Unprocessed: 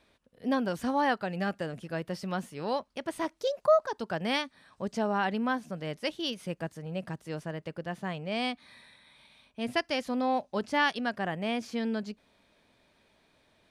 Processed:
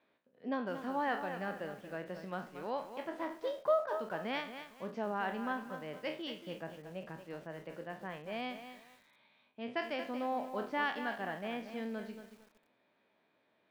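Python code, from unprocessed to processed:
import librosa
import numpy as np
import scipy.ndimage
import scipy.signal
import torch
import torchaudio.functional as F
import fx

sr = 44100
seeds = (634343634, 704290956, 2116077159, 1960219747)

y = fx.spec_trails(x, sr, decay_s=0.36)
y = fx.bandpass_edges(y, sr, low_hz=210.0, high_hz=2600.0)
y = fx.echo_crushed(y, sr, ms=230, feedback_pct=35, bits=8, wet_db=-9.5)
y = y * librosa.db_to_amplitude(-7.5)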